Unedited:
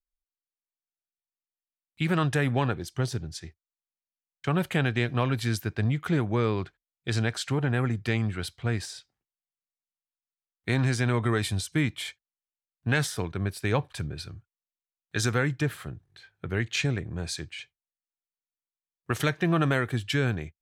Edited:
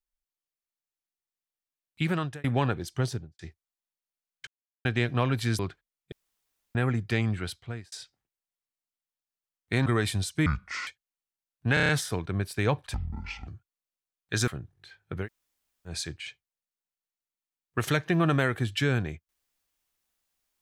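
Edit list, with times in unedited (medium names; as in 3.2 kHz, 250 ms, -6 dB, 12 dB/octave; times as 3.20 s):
2.02–2.44 s: fade out linear
3.06–3.39 s: studio fade out
4.47–4.85 s: mute
5.59–6.55 s: delete
7.08–7.71 s: room tone
8.35–8.88 s: fade out
10.82–11.23 s: delete
11.83–12.08 s: speed 61%
12.95 s: stutter 0.03 s, 6 plays
14.00–14.30 s: speed 56%
15.30–15.80 s: delete
16.56–17.22 s: room tone, crossfade 0.10 s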